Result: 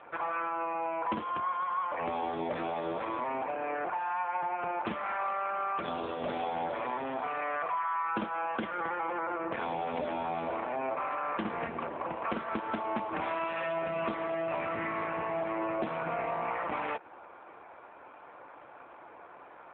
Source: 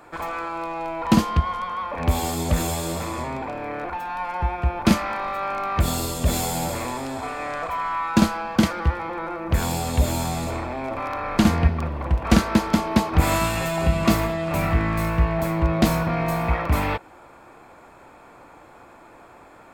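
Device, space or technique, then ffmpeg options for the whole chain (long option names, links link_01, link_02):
voicemail: -af "highpass=370,lowpass=2800,acompressor=threshold=-28dB:ratio=10" -ar 8000 -c:a libopencore_amrnb -b:a 7400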